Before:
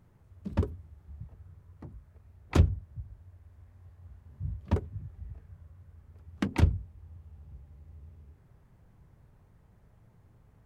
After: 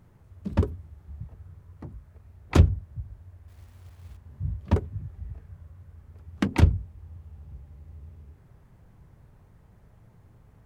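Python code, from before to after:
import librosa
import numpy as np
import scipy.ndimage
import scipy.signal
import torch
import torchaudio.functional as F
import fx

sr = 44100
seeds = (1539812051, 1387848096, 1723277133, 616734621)

y = fx.quant_companded(x, sr, bits=6, at=(3.48, 4.17))
y = F.gain(torch.from_numpy(y), 5.0).numpy()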